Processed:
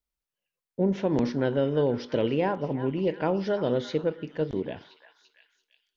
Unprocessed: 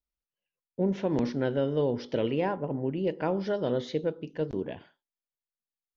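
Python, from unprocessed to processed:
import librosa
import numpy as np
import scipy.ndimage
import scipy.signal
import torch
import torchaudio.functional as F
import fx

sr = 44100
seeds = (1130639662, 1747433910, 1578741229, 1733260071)

y = fx.echo_stepped(x, sr, ms=340, hz=1300.0, octaves=0.7, feedback_pct=70, wet_db=-9.0)
y = fx.end_taper(y, sr, db_per_s=490.0)
y = y * librosa.db_to_amplitude(2.5)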